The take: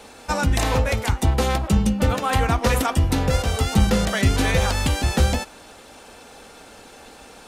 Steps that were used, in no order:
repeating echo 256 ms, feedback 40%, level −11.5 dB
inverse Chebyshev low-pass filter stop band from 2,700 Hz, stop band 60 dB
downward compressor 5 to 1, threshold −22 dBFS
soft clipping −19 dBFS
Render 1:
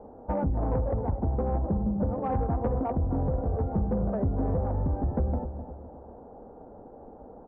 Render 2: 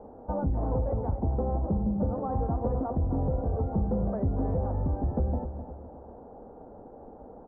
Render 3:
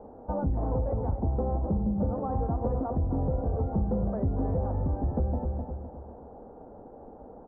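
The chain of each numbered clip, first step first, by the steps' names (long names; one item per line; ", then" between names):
inverse Chebyshev low-pass filter, then downward compressor, then repeating echo, then soft clipping
downward compressor, then repeating echo, then soft clipping, then inverse Chebyshev low-pass filter
repeating echo, then downward compressor, then soft clipping, then inverse Chebyshev low-pass filter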